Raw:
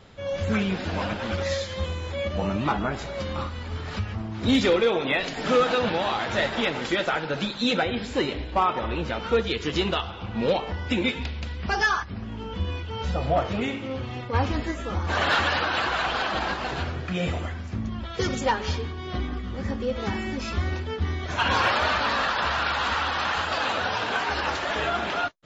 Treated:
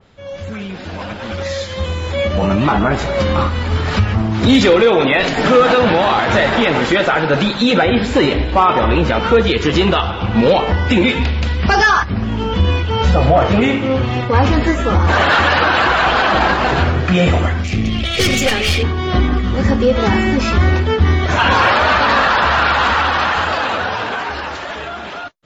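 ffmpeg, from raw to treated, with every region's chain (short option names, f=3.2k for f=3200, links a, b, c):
-filter_complex "[0:a]asettb=1/sr,asplit=3[a][b][c];[a]atrim=end=17.644[d];[b]atrim=start=17.64:end=18.83,asetpts=PTS-STARTPTS,afade=t=in:d=0.004:c=qsin,afade=t=out:st=1.186:d=0.004:c=qsin,highshelf=f=1.9k:t=q:w=3:g=7,aeval=exprs='(tanh(17.8*val(0)+0.35)-tanh(0.35))/17.8':c=same,asuperstop=centerf=940:order=4:qfactor=4.2[e];[c]atrim=start=18.826[f];[d][e]acrossfade=d=0.004:c1=hsin:c2=qsin[g];[g][f]acrossfade=d=0.004:c1=qsin:c2=hsin,alimiter=limit=-19.5dB:level=0:latency=1:release=25,dynaudnorm=f=200:g=21:m=16.5dB,adynamicequalizer=threshold=0.0398:dfrequency=2900:dqfactor=0.7:tfrequency=2900:tqfactor=0.7:attack=5:release=100:ratio=0.375:range=3:mode=cutabove:tftype=highshelf"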